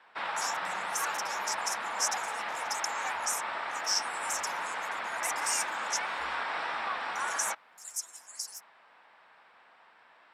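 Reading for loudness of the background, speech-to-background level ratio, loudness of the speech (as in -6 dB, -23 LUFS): -34.0 LUFS, -1.5 dB, -35.5 LUFS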